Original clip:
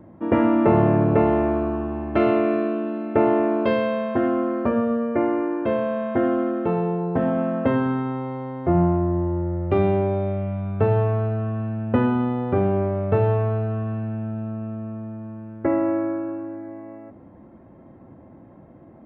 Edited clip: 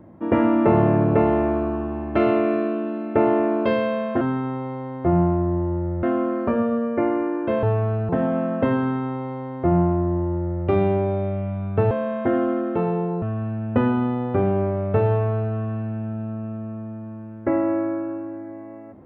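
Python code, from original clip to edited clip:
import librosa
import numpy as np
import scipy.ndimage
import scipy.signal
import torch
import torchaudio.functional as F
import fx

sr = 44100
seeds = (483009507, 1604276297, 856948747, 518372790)

y = fx.edit(x, sr, fx.swap(start_s=5.81, length_s=1.31, other_s=10.94, other_length_s=0.46),
    fx.duplicate(start_s=7.83, length_s=1.82, to_s=4.21), tone=tone)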